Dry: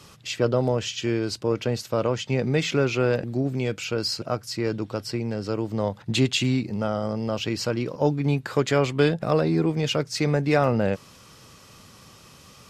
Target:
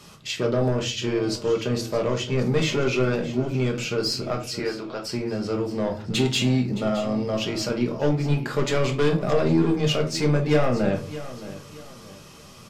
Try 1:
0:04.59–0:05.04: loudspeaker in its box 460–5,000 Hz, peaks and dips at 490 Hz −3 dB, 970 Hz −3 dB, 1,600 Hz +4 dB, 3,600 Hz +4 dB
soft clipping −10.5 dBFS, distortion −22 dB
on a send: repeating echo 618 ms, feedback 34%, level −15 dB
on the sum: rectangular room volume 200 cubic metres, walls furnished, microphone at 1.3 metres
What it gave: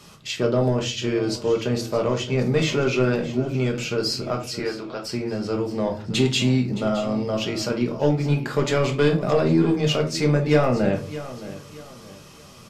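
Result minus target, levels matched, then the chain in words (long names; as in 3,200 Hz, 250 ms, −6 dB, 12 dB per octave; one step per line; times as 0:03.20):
soft clipping: distortion −8 dB
0:04.59–0:05.04: loudspeaker in its box 460–5,000 Hz, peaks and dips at 490 Hz −3 dB, 970 Hz −3 dB, 1,600 Hz +4 dB, 3,600 Hz +4 dB
soft clipping −17 dBFS, distortion −13 dB
on a send: repeating echo 618 ms, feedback 34%, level −15 dB
on the sum: rectangular room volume 200 cubic metres, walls furnished, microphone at 1.3 metres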